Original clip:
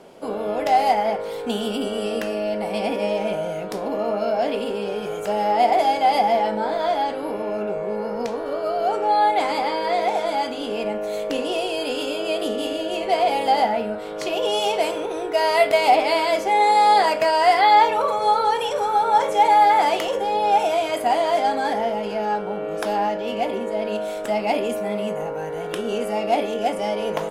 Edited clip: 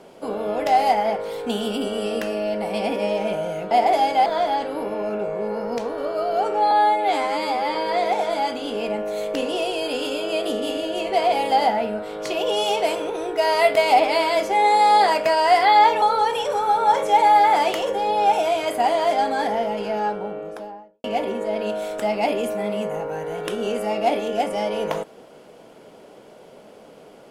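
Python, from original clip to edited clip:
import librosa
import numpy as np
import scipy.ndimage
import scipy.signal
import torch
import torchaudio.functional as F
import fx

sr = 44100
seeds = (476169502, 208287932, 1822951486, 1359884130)

y = fx.studio_fade_out(x, sr, start_s=22.2, length_s=1.1)
y = fx.edit(y, sr, fx.cut(start_s=3.71, length_s=1.86),
    fx.cut(start_s=6.12, length_s=0.62),
    fx.stretch_span(start_s=9.19, length_s=0.52, factor=2.0),
    fx.cut(start_s=17.98, length_s=0.3), tone=tone)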